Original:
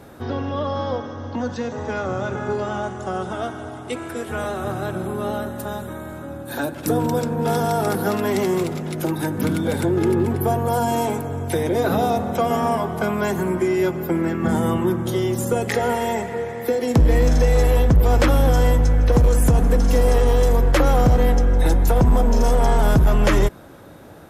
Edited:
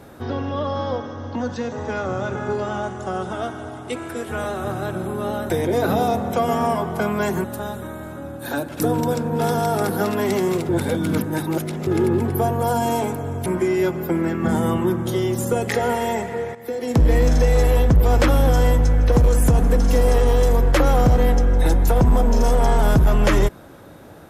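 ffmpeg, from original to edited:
ffmpeg -i in.wav -filter_complex "[0:a]asplit=7[link_01][link_02][link_03][link_04][link_05][link_06][link_07];[link_01]atrim=end=5.502[link_08];[link_02]atrim=start=11.518:end=13.462[link_09];[link_03]atrim=start=5.498:end=8.752[link_10];[link_04]atrim=start=8.748:end=9.932,asetpts=PTS-STARTPTS,areverse[link_11];[link_05]atrim=start=9.928:end=11.522[link_12];[link_06]atrim=start=13.458:end=16.55,asetpts=PTS-STARTPTS,afade=type=out:start_time=3.088:duration=0.004:curve=hsin:silence=0.223872[link_13];[link_07]atrim=start=16.55,asetpts=PTS-STARTPTS,afade=type=in:duration=0.51:silence=0.223872[link_14];[link_08][link_09]acrossfade=duration=0.004:curve1=hsin:curve2=hsin[link_15];[link_15][link_10]acrossfade=duration=0.004:curve1=hsin:curve2=hsin[link_16];[link_16][link_11]acrossfade=duration=0.004:curve1=hsin:curve2=hsin[link_17];[link_17][link_12]acrossfade=duration=0.004:curve1=hsin:curve2=hsin[link_18];[link_13][link_14]concat=n=2:v=0:a=1[link_19];[link_18][link_19]acrossfade=duration=0.004:curve1=hsin:curve2=hsin" out.wav

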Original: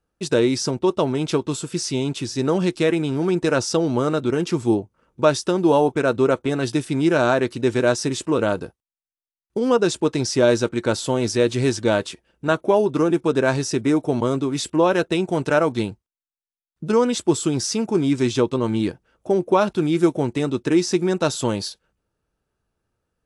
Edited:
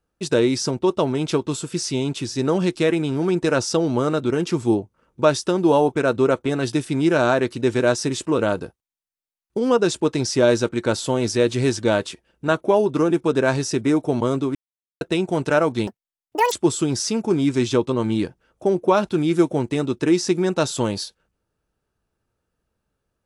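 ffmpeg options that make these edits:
ffmpeg -i in.wav -filter_complex "[0:a]asplit=5[link_01][link_02][link_03][link_04][link_05];[link_01]atrim=end=14.55,asetpts=PTS-STARTPTS,afade=type=out:start_time=14.546:duration=0.004:curve=hsin[link_06];[link_02]atrim=start=14.55:end=15.01,asetpts=PTS-STARTPTS,volume=0[link_07];[link_03]atrim=start=15.01:end=15.874,asetpts=PTS-STARTPTS,afade=type=in:duration=0.004:curve=hsin[link_08];[link_04]atrim=start=15.87:end=17.16,asetpts=PTS-STARTPTS,asetrate=87759,aresample=44100,atrim=end_sample=28587,asetpts=PTS-STARTPTS[link_09];[link_05]atrim=start=17.156[link_10];[link_06][link_07][link_08]concat=n=3:v=0:a=1[link_11];[link_11][link_09]acrossfade=duration=0.004:curve1=hsin:curve2=hsin[link_12];[link_12][link_10]acrossfade=duration=0.004:curve1=hsin:curve2=hsin" out.wav

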